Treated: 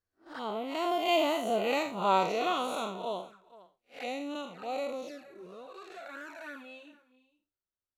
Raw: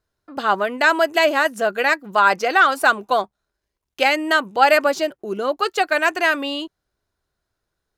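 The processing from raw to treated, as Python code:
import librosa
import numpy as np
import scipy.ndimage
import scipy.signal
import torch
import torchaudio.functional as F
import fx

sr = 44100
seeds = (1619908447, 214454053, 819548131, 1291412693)

p1 = fx.spec_blur(x, sr, span_ms=142.0)
p2 = fx.doppler_pass(p1, sr, speed_mps=29, closest_m=19.0, pass_at_s=1.77)
p3 = p2 + fx.echo_single(p2, sr, ms=463, db=-21.0, dry=0)
y = fx.env_flanger(p3, sr, rest_ms=10.8, full_db=-34.0)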